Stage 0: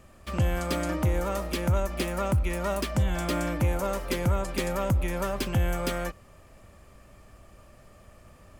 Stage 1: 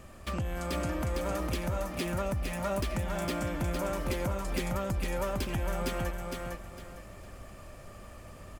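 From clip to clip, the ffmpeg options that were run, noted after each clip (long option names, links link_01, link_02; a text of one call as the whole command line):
ffmpeg -i in.wav -filter_complex "[0:a]acompressor=threshold=-33dB:ratio=6,asoftclip=type=tanh:threshold=-29dB,asplit=2[link_01][link_02];[link_02]aecho=0:1:456|912|1368|1824:0.668|0.194|0.0562|0.0163[link_03];[link_01][link_03]amix=inputs=2:normalize=0,volume=3.5dB" out.wav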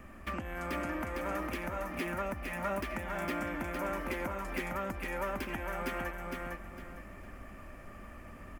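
ffmpeg -i in.wav -filter_complex "[0:a]equalizer=frequency=125:width_type=o:width=1:gain=-7,equalizer=frequency=250:width_type=o:width=1:gain=6,equalizer=frequency=500:width_type=o:width=1:gain=-5,equalizer=frequency=2000:width_type=o:width=1:gain=6,equalizer=frequency=4000:width_type=o:width=1:gain=-10,equalizer=frequency=8000:width_type=o:width=1:gain=-8,equalizer=frequency=16000:width_type=o:width=1:gain=-3,acrossover=split=330[link_01][link_02];[link_01]acompressor=threshold=-41dB:ratio=6[link_03];[link_03][link_02]amix=inputs=2:normalize=0" out.wav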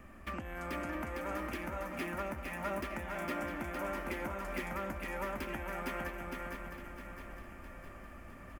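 ffmpeg -i in.wav -af "aecho=1:1:659|1318|1977|2636|3295|3954:0.355|0.192|0.103|0.0559|0.0302|0.0163,volume=-3dB" out.wav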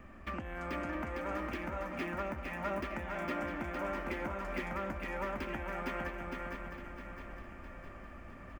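ffmpeg -i in.wav -af "equalizer=frequency=12000:width_type=o:width=1.1:gain=-14.5,volume=1dB" out.wav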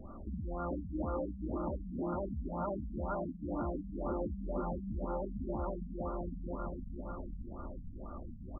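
ffmpeg -i in.wav -af "asuperstop=centerf=2200:order=4:qfactor=1.8,alimiter=level_in=8.5dB:limit=-24dB:level=0:latency=1:release=13,volume=-8.5dB,afftfilt=real='re*lt(b*sr/1024,240*pow(1500/240,0.5+0.5*sin(2*PI*2*pts/sr)))':imag='im*lt(b*sr/1024,240*pow(1500/240,0.5+0.5*sin(2*PI*2*pts/sr)))':win_size=1024:overlap=0.75,volume=5.5dB" out.wav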